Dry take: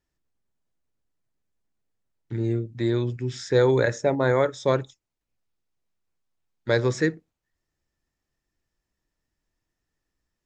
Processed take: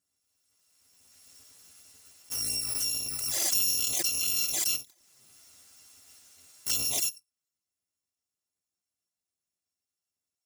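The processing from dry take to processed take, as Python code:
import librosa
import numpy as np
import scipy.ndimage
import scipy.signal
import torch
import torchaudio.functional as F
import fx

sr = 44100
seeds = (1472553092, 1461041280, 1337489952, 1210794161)

y = fx.bit_reversed(x, sr, seeds[0], block=256)
y = scipy.signal.sosfilt(scipy.signal.butter(2, 130.0, 'highpass', fs=sr, output='sos'), y)
y = fx.peak_eq(y, sr, hz=6900.0, db=9.5, octaves=1.2)
y = fx.env_flanger(y, sr, rest_ms=11.3, full_db=-17.0)
y = fx.pre_swell(y, sr, db_per_s=22.0)
y = F.gain(torch.from_numpy(y), -7.5).numpy()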